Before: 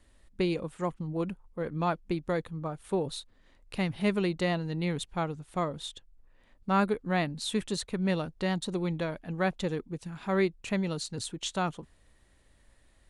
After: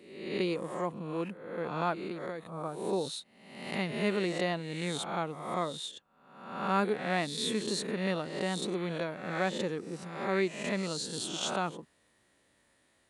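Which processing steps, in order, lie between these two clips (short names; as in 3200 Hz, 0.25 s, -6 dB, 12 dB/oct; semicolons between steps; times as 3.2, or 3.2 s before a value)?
spectral swells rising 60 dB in 0.86 s; HPF 180 Hz 12 dB/oct; 1.93–2.53 compressor 6:1, threshold -32 dBFS, peak gain reduction 8.5 dB; gain -3 dB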